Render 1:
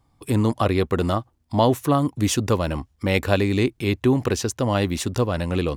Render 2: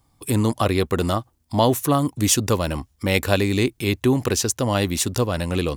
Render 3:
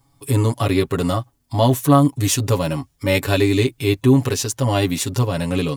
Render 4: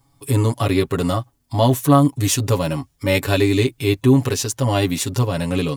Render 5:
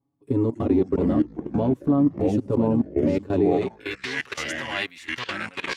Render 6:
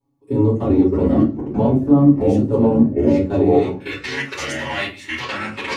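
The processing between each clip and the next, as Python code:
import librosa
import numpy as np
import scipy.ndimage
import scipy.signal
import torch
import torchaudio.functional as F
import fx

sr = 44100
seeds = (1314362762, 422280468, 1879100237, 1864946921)

y1 = fx.high_shelf(x, sr, hz=5100.0, db=11.5)
y2 = y1 + 0.93 * np.pad(y1, (int(7.2 * sr / 1000.0), 0))[:len(y1)]
y2 = fx.hpss(y2, sr, part='harmonic', gain_db=7)
y2 = F.gain(torch.from_numpy(y2), -5.0).numpy()
y3 = y2
y4 = fx.echo_pitch(y3, sr, ms=204, semitones=-4, count=3, db_per_echo=-3.0)
y4 = fx.level_steps(y4, sr, step_db=18)
y4 = fx.filter_sweep_bandpass(y4, sr, from_hz=310.0, to_hz=2000.0, start_s=3.39, end_s=3.98, q=1.5)
y4 = F.gain(torch.from_numpy(y4), 3.5).numpy()
y5 = fx.room_shoebox(y4, sr, seeds[0], volume_m3=120.0, walls='furnished', distance_m=4.3)
y5 = F.gain(torch.from_numpy(y5), -4.5).numpy()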